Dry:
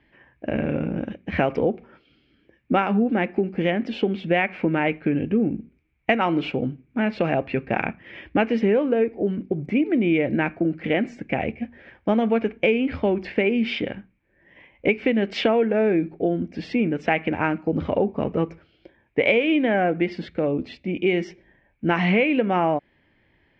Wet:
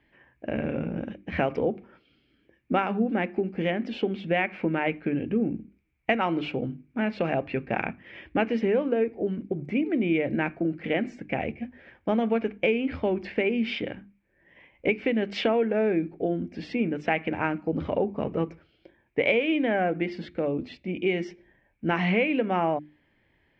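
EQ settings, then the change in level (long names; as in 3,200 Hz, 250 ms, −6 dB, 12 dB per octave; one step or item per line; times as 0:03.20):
mains-hum notches 50/100/150/200/250/300/350 Hz
−4.0 dB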